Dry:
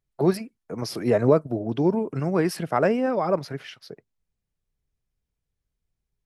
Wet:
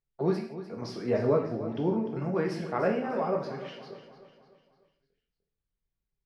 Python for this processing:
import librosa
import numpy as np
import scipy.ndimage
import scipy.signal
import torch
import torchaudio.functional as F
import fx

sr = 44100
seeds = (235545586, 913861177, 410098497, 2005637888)

y = scipy.signal.sosfilt(scipy.signal.butter(2, 4600.0, 'lowpass', fs=sr, output='sos'), x)
y = fx.echo_feedback(y, sr, ms=299, feedback_pct=46, wet_db=-13)
y = fx.rev_gated(y, sr, seeds[0], gate_ms=200, shape='falling', drr_db=1.0)
y = y * 10.0 ** (-8.5 / 20.0)